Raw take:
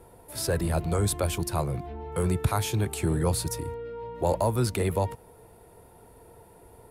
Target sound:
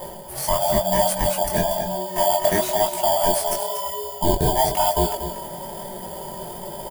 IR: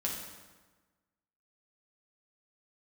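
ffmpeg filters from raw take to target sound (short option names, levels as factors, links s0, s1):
-filter_complex "[0:a]afftfilt=real='real(if(lt(b,1008),b+24*(1-2*mod(floor(b/24),2)),b),0)':imag='imag(if(lt(b,1008),b+24*(1-2*mod(floor(b/24),2)),b),0)':win_size=2048:overlap=0.75,highshelf=f=2300:g=-10,asplit=2[s0][s1];[s1]acrusher=samples=11:mix=1:aa=0.000001,volume=0.708[s2];[s0][s2]amix=inputs=2:normalize=0,flanger=delay=16.5:depth=6.9:speed=1,aecho=1:1:5.5:0.33,areverse,acompressor=mode=upward:threshold=0.0447:ratio=2.5,areverse,aemphasis=mode=production:type=50fm,aecho=1:1:237:0.335,volume=1.78"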